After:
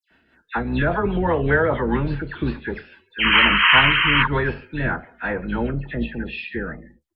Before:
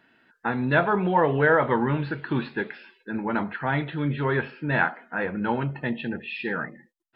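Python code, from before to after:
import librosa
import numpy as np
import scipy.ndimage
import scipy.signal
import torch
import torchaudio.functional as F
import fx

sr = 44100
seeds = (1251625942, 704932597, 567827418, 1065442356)

y = fx.octave_divider(x, sr, octaves=2, level_db=-4.0)
y = fx.spec_paint(y, sr, seeds[0], shape='noise', start_s=3.14, length_s=1.04, low_hz=890.0, high_hz=3200.0, level_db=-16.0)
y = fx.dispersion(y, sr, late='lows', ms=108.0, hz=2600.0)
y = fx.rotary_switch(y, sr, hz=5.0, then_hz=1.1, switch_at_s=3.05)
y = y * librosa.db_to_amplitude(3.5)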